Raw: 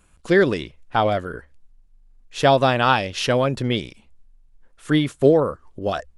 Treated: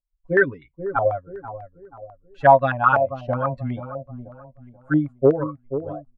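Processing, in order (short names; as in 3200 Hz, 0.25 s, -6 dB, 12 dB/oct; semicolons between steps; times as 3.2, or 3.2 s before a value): per-bin expansion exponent 2; comb 7.2 ms, depth 100%; hard clip -6 dBFS, distortion -20 dB; on a send: dark delay 0.484 s, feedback 36%, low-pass 810 Hz, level -9.5 dB; on the sum: stepped low-pass 8.1 Hz 620–1800 Hz; gain -5 dB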